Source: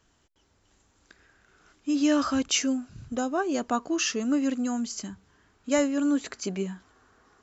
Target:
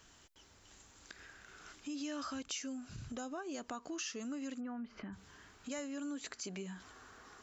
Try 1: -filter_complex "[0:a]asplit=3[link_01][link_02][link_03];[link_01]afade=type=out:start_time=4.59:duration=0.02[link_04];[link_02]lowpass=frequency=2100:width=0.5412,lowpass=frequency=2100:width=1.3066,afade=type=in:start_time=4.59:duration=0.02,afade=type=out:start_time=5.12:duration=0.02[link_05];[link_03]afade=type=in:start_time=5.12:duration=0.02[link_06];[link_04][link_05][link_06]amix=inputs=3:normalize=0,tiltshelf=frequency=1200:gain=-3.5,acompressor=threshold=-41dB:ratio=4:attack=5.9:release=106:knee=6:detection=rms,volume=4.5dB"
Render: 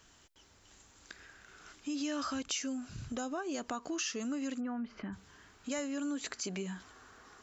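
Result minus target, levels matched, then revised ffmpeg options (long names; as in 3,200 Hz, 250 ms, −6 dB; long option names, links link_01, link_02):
downward compressor: peak gain reduction −5 dB
-filter_complex "[0:a]asplit=3[link_01][link_02][link_03];[link_01]afade=type=out:start_time=4.59:duration=0.02[link_04];[link_02]lowpass=frequency=2100:width=0.5412,lowpass=frequency=2100:width=1.3066,afade=type=in:start_time=4.59:duration=0.02,afade=type=out:start_time=5.12:duration=0.02[link_05];[link_03]afade=type=in:start_time=5.12:duration=0.02[link_06];[link_04][link_05][link_06]amix=inputs=3:normalize=0,tiltshelf=frequency=1200:gain=-3.5,acompressor=threshold=-48dB:ratio=4:attack=5.9:release=106:knee=6:detection=rms,volume=4.5dB"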